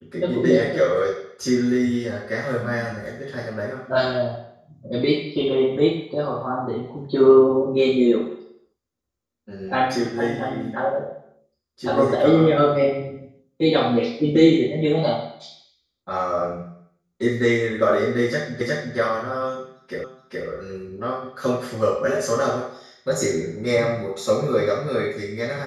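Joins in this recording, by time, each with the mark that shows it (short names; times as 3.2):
18.61 repeat of the last 0.36 s
20.04 repeat of the last 0.42 s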